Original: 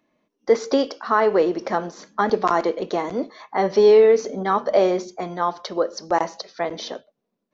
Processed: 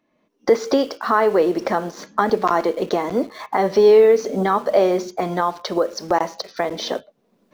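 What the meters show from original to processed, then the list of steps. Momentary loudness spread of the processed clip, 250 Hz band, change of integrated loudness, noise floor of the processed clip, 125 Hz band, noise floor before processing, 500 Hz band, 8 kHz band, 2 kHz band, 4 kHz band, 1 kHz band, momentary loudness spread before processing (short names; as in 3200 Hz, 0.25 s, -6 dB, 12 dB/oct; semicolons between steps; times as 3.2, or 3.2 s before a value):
12 LU, +3.0 dB, +1.5 dB, -66 dBFS, +4.0 dB, -78 dBFS, +1.5 dB, n/a, +2.0 dB, +2.5 dB, +2.0 dB, 14 LU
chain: recorder AGC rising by 24 dB/s; high shelf 5700 Hz -4 dB; in parallel at -10.5 dB: bit-crush 6-bit; on the sum: gain -1 dB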